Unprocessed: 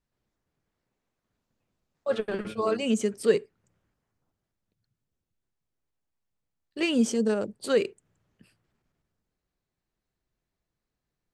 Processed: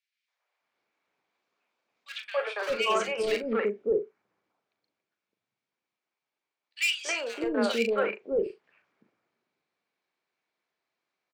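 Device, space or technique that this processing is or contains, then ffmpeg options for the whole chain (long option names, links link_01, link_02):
megaphone: -filter_complex "[0:a]highpass=520,lowpass=4000,equalizer=frequency=2300:width_type=o:width=0.23:gain=9,asoftclip=type=hard:threshold=-24.5dB,asplit=2[link_01][link_02];[link_02]adelay=39,volume=-9dB[link_03];[link_01][link_03]amix=inputs=2:normalize=0,acrossover=split=530|2100[link_04][link_05][link_06];[link_05]adelay=280[link_07];[link_04]adelay=610[link_08];[link_08][link_07][link_06]amix=inputs=3:normalize=0,volume=7dB"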